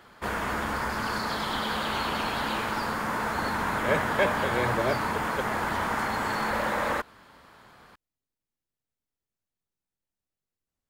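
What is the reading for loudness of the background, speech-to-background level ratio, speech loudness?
-28.5 LUFS, -2.0 dB, -30.5 LUFS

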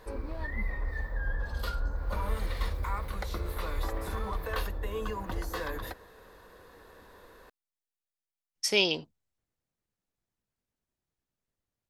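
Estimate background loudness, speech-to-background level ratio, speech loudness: -36.0 LUFS, 8.5 dB, -27.5 LUFS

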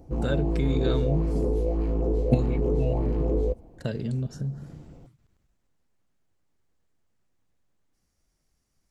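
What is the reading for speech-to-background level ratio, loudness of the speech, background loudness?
-3.5 dB, -31.0 LUFS, -27.5 LUFS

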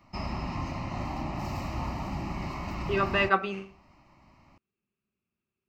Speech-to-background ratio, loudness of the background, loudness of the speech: 7.5 dB, -35.0 LUFS, -27.5 LUFS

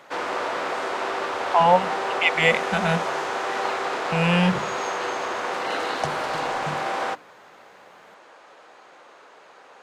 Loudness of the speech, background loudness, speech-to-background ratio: -22.5 LUFS, -27.0 LUFS, 4.5 dB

